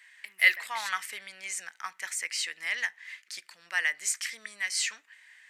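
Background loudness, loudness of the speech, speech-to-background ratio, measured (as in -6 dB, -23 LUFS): -41.5 LUFS, -30.0 LUFS, 11.5 dB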